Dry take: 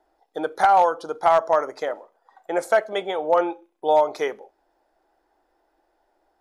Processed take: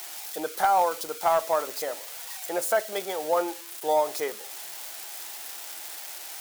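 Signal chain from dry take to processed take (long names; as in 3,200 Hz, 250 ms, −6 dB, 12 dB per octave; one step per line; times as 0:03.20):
spike at every zero crossing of −19.5 dBFS
level −5.5 dB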